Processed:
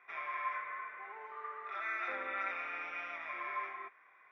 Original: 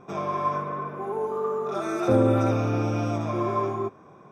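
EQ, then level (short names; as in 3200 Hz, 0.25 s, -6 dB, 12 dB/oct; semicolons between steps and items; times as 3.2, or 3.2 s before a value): ladder band-pass 2100 Hz, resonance 80%; air absorption 150 m; high shelf 3300 Hz -11 dB; +12.0 dB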